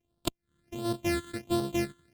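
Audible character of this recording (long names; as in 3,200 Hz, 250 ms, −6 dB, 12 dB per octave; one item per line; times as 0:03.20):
a buzz of ramps at a fixed pitch in blocks of 128 samples
phaser sweep stages 8, 1.4 Hz, lowest notch 720–2,200 Hz
MP3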